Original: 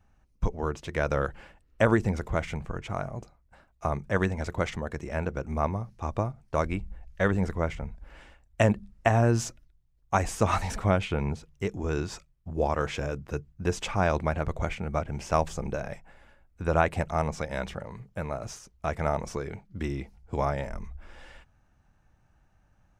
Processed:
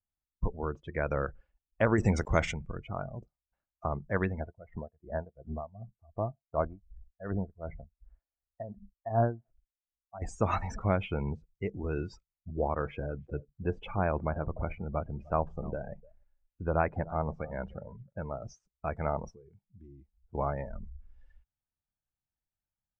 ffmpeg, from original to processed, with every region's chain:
ffmpeg -i in.wav -filter_complex "[0:a]asettb=1/sr,asplit=3[link_01][link_02][link_03];[link_01]atrim=end=1.984[link_04];[link_02]atrim=start=1.98:end=2.52,asetpts=PTS-STARTPTS,afade=type=in:duration=0.004:curve=qsin,afade=type=out:start_time=0.536:duration=0.004:curve=qsin,highshelf=frequency=3700:gain=12,acontrast=39,aeval=exprs='val(0)*gte(abs(val(0)),0.0141)':channel_layout=same[link_05];[link_03]atrim=start=2.516[link_06];[link_04][link_05]acrossfade=duration=0.004:curve1=hsin:curve2=qsin[link_07];[link_07][link_06]acrossfade=duration=0.004:curve1=qsin:curve2=hsin,asettb=1/sr,asplit=3[link_08][link_09][link_10];[link_08]atrim=end=4.404[link_11];[link_09]atrim=start=4.4:end=10.22,asetpts=PTS-STARTPTS,afade=type=in:duration=0.004:curve=qsin,afade=type=out:start_time=5.816:duration=0.004:curve=qsin,lowpass=frequency=1900:width=0.5412,lowpass=frequency=1900:width=1.3066,equalizer=frequency=670:width=5.9:gain=8,aeval=exprs='val(0)*pow(10,-19*(0.5-0.5*cos(2*PI*2.7*n/s))/20)':channel_layout=same[link_12];[link_10]atrim=start=10.216[link_13];[link_11][link_12]acrossfade=duration=0.004:curve1=hsin:curve2=qsin[link_14];[link_14][link_13]acrossfade=duration=0.004:curve1=qsin:curve2=hsin,asettb=1/sr,asplit=3[link_15][link_16][link_17];[link_15]atrim=end=12.794[link_18];[link_16]atrim=start=12.79:end=18.19,asetpts=PTS-STARTPTS,afade=type=in:duration=0.004:curve=qsin,afade=type=out:start_time=5.396:duration=0.004:curve=qsin,lowpass=frequency=2100:poles=1,aecho=1:1:301:0.126,atrim=end_sample=238140[link_19];[link_17]atrim=start=18.186[link_20];[link_18][link_19]acrossfade=duration=0.004:curve1=hsin:curve2=qsin[link_21];[link_21][link_20]acrossfade=duration=0.004:curve1=qsin:curve2=hsin,asettb=1/sr,asplit=3[link_22][link_23][link_24];[link_22]atrim=end=19.304[link_25];[link_23]atrim=start=19.3:end=20.35,asetpts=PTS-STARTPTS,afade=type=in:duration=0.004:curve=qsin,afade=type=out:start_time=1.046:duration=0.004:curve=qsin,acompressor=threshold=-53dB:ratio=2:attack=3.2:release=140:knee=1:detection=peak,aeval=exprs='clip(val(0),-1,0.0112)':channel_layout=same[link_26];[link_24]atrim=start=20.346[link_27];[link_25][link_26]acrossfade=duration=0.004:curve1=hsin:curve2=qsin[link_28];[link_28][link_27]acrossfade=duration=0.004:curve1=qsin:curve2=hsin,afftdn=noise_reduction=28:noise_floor=-36,lowpass=8400,volume=-4dB" out.wav

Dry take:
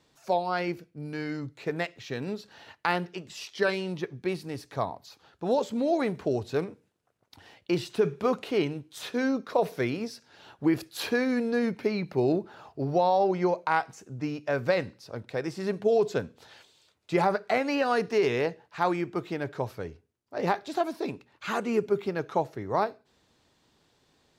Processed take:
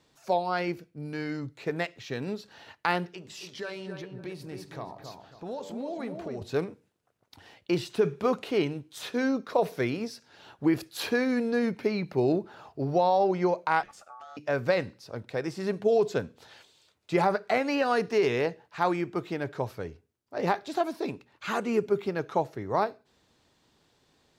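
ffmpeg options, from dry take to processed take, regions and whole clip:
ffmpeg -i in.wav -filter_complex "[0:a]asettb=1/sr,asplit=3[link_01][link_02][link_03];[link_01]atrim=end=3.114[link_04];[link_02]atrim=start=3.11:end=6.42,asetpts=PTS-STARTPTS,afade=type=in:duration=0.004:curve=qsin,afade=type=out:start_time=3.306:duration=0.004:curve=qsin,bandreject=frequency=96.94:width_type=h:width=4,bandreject=frequency=193.88:width_type=h:width=4,bandreject=frequency=290.82:width_type=h:width=4,bandreject=frequency=387.76:width_type=h:width=4,bandreject=frequency=484.7:width_type=h:width=4,bandreject=frequency=581.64:width_type=h:width=4,bandreject=frequency=678.58:width_type=h:width=4,bandreject=frequency=775.52:width_type=h:width=4,bandreject=frequency=872.46:width_type=h:width=4,bandreject=frequency=969.4:width_type=h:width=4,bandreject=frequency=1066.34:width_type=h:width=4,bandreject=frequency=1163.28:width_type=h:width=4,bandreject=frequency=1260.22:width_type=h:width=4,bandreject=frequency=1357.16:width_type=h:width=4,bandreject=frequency=1454.1:width_type=h:width=4,acompressor=threshold=-41dB:ratio=2:attack=3.2:release=140:knee=1:detection=peak,asplit=2[link_05][link_06];[link_06]adelay=273,lowpass=frequency=1500:poles=1,volume=-5dB,asplit=2[link_07][link_08];[link_08]adelay=273,lowpass=frequency=1500:poles=1,volume=0.33,asplit=2[link_09][link_10];[link_10]adelay=273,lowpass=frequency=1500:poles=1,volume=0.33,asplit=2[link_11][link_12];[link_12]adelay=273,lowpass=frequency=1500:poles=1,volume=0.33[link_13];[link_05][link_07][link_09][link_11][link_13]amix=inputs=5:normalize=0,atrim=end_sample=145971[link_14];[link_03]atrim=start=6.416[link_15];[link_04][link_14]acrossfade=duration=0.004:curve1=hsin:curve2=qsin[link_16];[link_16][link_15]acrossfade=duration=0.004:curve1=qsin:curve2=hsin,asettb=1/sr,asplit=3[link_17][link_18][link_19];[link_17]atrim=end=13.834[link_20];[link_18]atrim=start=13.83:end=14.37,asetpts=PTS-STARTPTS,afade=type=in:duration=0.004:curve=qsin,afade=type=out:start_time=0.536:duration=0.004:curve=qsin,acompressor=threshold=-40dB:ratio=12:attack=3.2:release=140:knee=1:detection=peak,aeval=exprs='val(0)*sin(2*PI*1000*n/s)':channel_layout=same[link_21];[link_19]atrim=start=14.366[link_22];[link_20][link_21]acrossfade=duration=0.004:curve1=hsin:curve2=qsin[link_23];[link_23][link_22]acrossfade=duration=0.004:curve1=qsin:curve2=hsin" out.wav

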